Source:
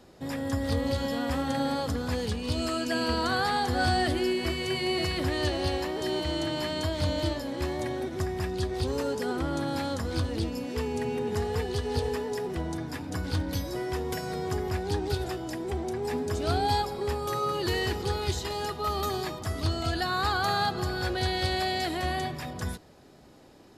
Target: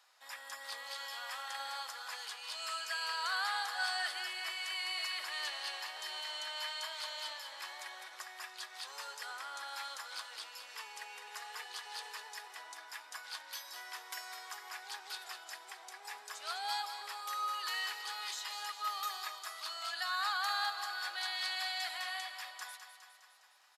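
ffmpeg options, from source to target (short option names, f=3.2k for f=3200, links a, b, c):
-af "highpass=f=980:w=0.5412,highpass=f=980:w=1.3066,aecho=1:1:205|410|615|820|1025|1230|1435:0.335|0.198|0.117|0.0688|0.0406|0.0239|0.0141,volume=-5dB"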